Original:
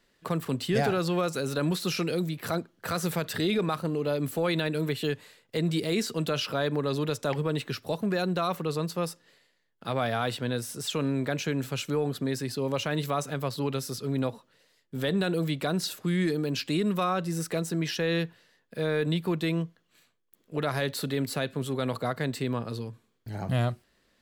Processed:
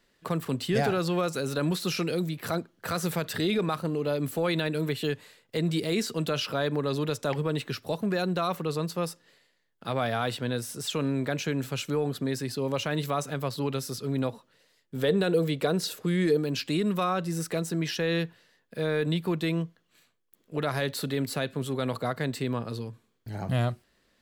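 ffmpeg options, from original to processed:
-filter_complex "[0:a]asettb=1/sr,asplit=3[a][b][c];[a]atrim=end=15.034[d];[b]atrim=start=15.03:end=16.37,asetpts=PTS-STARTPTS,afade=t=in:d=0.004:c=qsin,afade=t=out:st=1.336:d=0.004:c=qsin,equalizer=f=460:w=3.9:g=9.5[e];[c]atrim=start=16.366[f];[d][e]acrossfade=d=0.004:c1=hsin:c2=qsin[g];[g][f]acrossfade=d=0.004:c1=qsin:c2=hsin"

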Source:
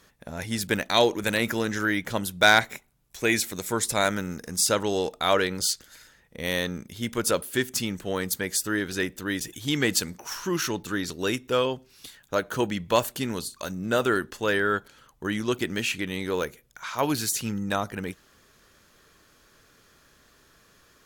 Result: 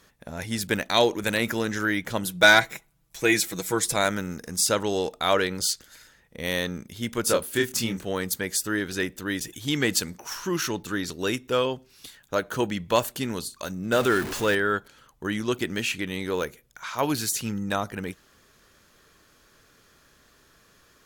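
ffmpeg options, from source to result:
-filter_complex "[0:a]asettb=1/sr,asplit=3[a][b][c];[a]atrim=end=2.244[d];[b]atrim=start=2.24:end=3.96,asetpts=PTS-STARTPTS,afade=t=in:d=0.004:c=qsin,afade=t=out:st=1.716:d=0.004:c=qsin,aecho=1:1:6.1:0.65,atrim=end_sample=75852[e];[c]atrim=start=3.956[f];[d][e]acrossfade=d=0.004:c1=hsin:c2=qsin[g];[g][f]acrossfade=d=0.004:c1=qsin:c2=hsin,asettb=1/sr,asplit=3[h][i][j];[h]atrim=end=7.264[k];[i]atrim=start=7.26:end=8.05,asetpts=PTS-STARTPTS,afade=t=in:d=0.004:c=qsin,afade=t=out:st=0.786:d=0.004:c=qsin,asplit=2[l][m];[m]adelay=26,volume=-4dB[n];[l][n]amix=inputs=2:normalize=0,atrim=end_sample=34839[o];[j]atrim=start=8.046[p];[k][o]acrossfade=d=0.004:c1=hsin:c2=qsin[q];[q][p]acrossfade=d=0.004:c1=qsin:c2=hsin,asettb=1/sr,asplit=3[r][s][t];[r]atrim=end=13.924[u];[s]atrim=start=13.92:end=14.55,asetpts=PTS-STARTPTS,afade=t=in:d=0.004:c=qsin,afade=t=out:st=0.626:d=0.004:c=qsin,aeval=exprs='val(0)+0.5*0.0398*sgn(val(0))':c=same[v];[t]atrim=start=14.546[w];[u][v]acrossfade=d=0.004:c1=hsin:c2=qsin[x];[x][w]acrossfade=d=0.004:c1=qsin:c2=hsin"

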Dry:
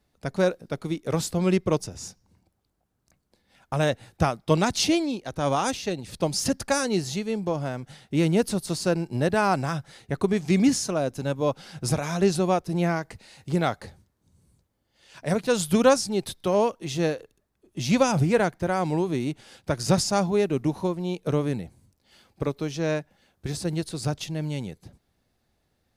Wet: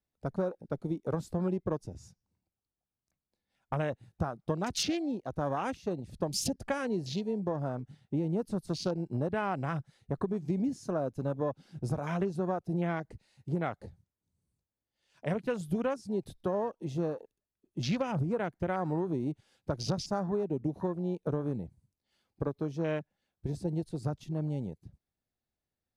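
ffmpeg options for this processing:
-filter_complex "[0:a]asettb=1/sr,asplit=3[a][b][c];[a]atrim=end=7.754[d];[b]atrim=start=7.75:end=8.3,asetpts=PTS-STARTPTS,afade=t=in:d=0.004:c=qsin,afade=t=out:st=0.546:d=0.004:c=qsin,highshelf=f=6.8k:g=-6[e];[c]atrim=start=8.296[f];[d][e]acrossfade=d=0.004:c1=hsin:c2=qsin[g];[g][f]acrossfade=d=0.004:c1=qsin:c2=hsin,acompressor=threshold=-24dB:ratio=16,afwtdn=0.0141,volume=-3dB"

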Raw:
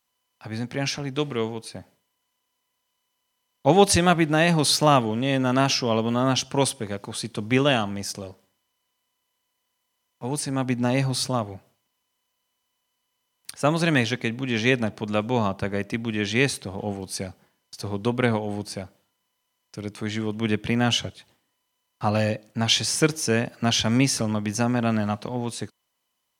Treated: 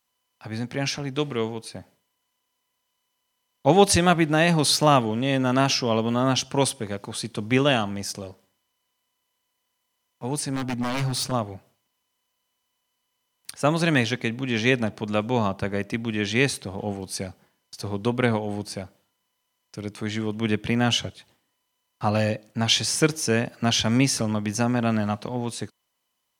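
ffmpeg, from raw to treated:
-filter_complex "[0:a]asettb=1/sr,asplit=3[a][b][c];[a]atrim=end=10.514[d];[b]atrim=start=10.51:end=11.32,asetpts=PTS-STARTPTS,afade=t=in:d=0.004:c=qsin,afade=t=out:st=0.806:d=0.004:c=qsin,aeval=exprs='0.1*(abs(mod(val(0)/0.1+3,4)-2)-1)':c=same[e];[c]atrim=start=11.316[f];[d][e]acrossfade=d=0.004:c1=hsin:c2=qsin[g];[g][f]acrossfade=d=0.004:c1=qsin:c2=hsin"

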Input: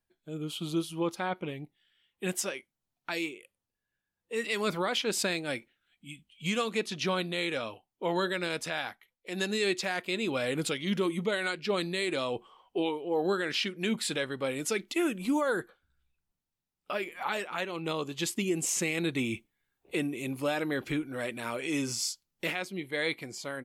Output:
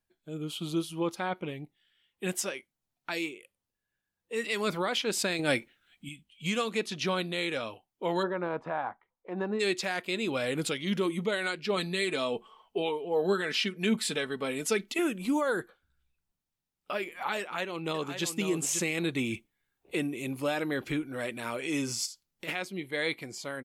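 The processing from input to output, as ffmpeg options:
-filter_complex "[0:a]asettb=1/sr,asplit=3[a][b][c];[a]atrim=end=5.394[d];[b]atrim=start=5.39:end=6.09,asetpts=PTS-STARTPTS,afade=t=in:d=0.004:c=qsin,afade=t=out:st=0.696:d=0.004:c=qsin,acontrast=84[e];[c]atrim=start=6.086[f];[d][e]acrossfade=d=0.004:c1=hsin:c2=qsin[g];[g][f]acrossfade=d=0.004:c1=qsin:c2=hsin,asplit=3[h][i][j];[h]afade=t=out:st=8.22:d=0.02[k];[i]lowpass=f=1k:t=q:w=2.7,afade=t=in:st=8.22:d=0.02,afade=t=out:st=9.59:d=0.02[l];[j]afade=t=in:st=9.59:d=0.02[m];[k][l][m]amix=inputs=3:normalize=0,asettb=1/sr,asplit=3[n][o][p];[n]atrim=end=11.764[q];[o]atrim=start=11.76:end=14.99,asetpts=PTS-STARTPTS,afade=t=in:d=0.004:c=qsin,afade=t=out:st=3.226:d=0.004:c=qsin,aecho=1:1:4.6:0.52,atrim=end_sample=142443[r];[p]atrim=start=14.986[s];[q][r]acrossfade=d=0.004:c1=hsin:c2=qsin[t];[t][s]acrossfade=d=0.004:c1=qsin:c2=hsin,asplit=2[u][v];[v]afade=t=in:st=17.4:d=0.01,afade=t=out:st=18.27:d=0.01,aecho=0:1:540|1080:0.398107|0.0597161[w];[u][w]amix=inputs=2:normalize=0,asplit=3[x][y][z];[x]afade=t=out:st=22.05:d=0.02[aa];[y]acompressor=threshold=-41dB:ratio=3:attack=3.2:release=140:knee=1:detection=peak,afade=t=in:st=22.05:d=0.02,afade=t=out:st=22.47:d=0.02[ab];[z]afade=t=in:st=22.47:d=0.02[ac];[aa][ab][ac]amix=inputs=3:normalize=0"

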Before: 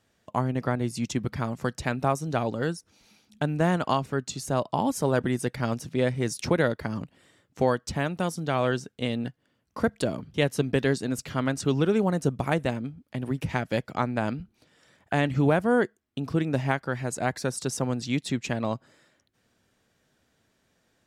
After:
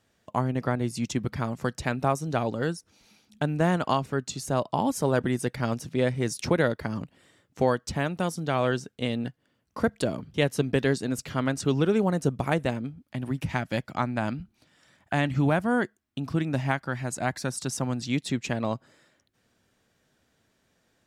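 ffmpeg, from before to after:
-filter_complex "[0:a]asettb=1/sr,asplit=3[a][b][c];[a]atrim=end=13.024[d];[b]atrim=start=13.02:end=18.03,asetpts=PTS-STARTPTS,afade=t=in:d=0.004:c=qsin,afade=t=out:st=5.006:d=0.004:c=qsin,equalizer=f=450:t=o:w=0.5:g=-7.5[e];[c]atrim=start=18.026[f];[d][e]acrossfade=d=0.004:c1=hsin:c2=qsin[g];[g][f]acrossfade=d=0.004:c1=qsin:c2=hsin"

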